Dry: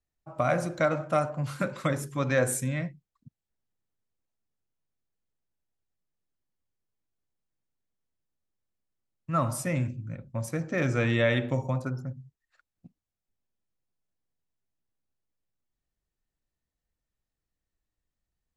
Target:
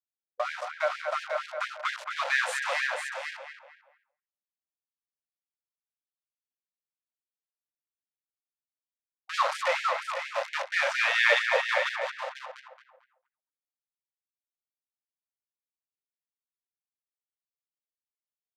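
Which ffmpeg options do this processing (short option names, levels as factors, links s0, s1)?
-filter_complex "[0:a]aeval=exprs='val(0)*gte(abs(val(0)),0.0335)':c=same,asplit=2[s0][s1];[s1]aecho=0:1:498:0.447[s2];[s0][s2]amix=inputs=2:normalize=0,dynaudnorm=f=360:g=11:m=3.98,highpass=49,asplit=2[s3][s4];[s4]adelay=223,lowpass=f=2200:p=1,volume=0.562,asplit=2[s5][s6];[s6]adelay=223,lowpass=f=2200:p=1,volume=0.4,asplit=2[s7][s8];[s8]adelay=223,lowpass=f=2200:p=1,volume=0.4,asplit=2[s9][s10];[s10]adelay=223,lowpass=f=2200:p=1,volume=0.4,asplit=2[s11][s12];[s12]adelay=223,lowpass=f=2200:p=1,volume=0.4[s13];[s5][s7][s9][s11][s13]amix=inputs=5:normalize=0[s14];[s3][s14]amix=inputs=2:normalize=0,agate=range=0.0224:threshold=0.00501:ratio=3:detection=peak,lowpass=4100,afftfilt=real='re*gte(b*sr/1024,470*pow(1600/470,0.5+0.5*sin(2*PI*4.3*pts/sr)))':imag='im*gte(b*sr/1024,470*pow(1600/470,0.5+0.5*sin(2*PI*4.3*pts/sr)))':win_size=1024:overlap=0.75,volume=0.794"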